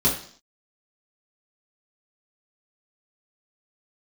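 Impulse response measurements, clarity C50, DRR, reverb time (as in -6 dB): 7.5 dB, -6.0 dB, 0.50 s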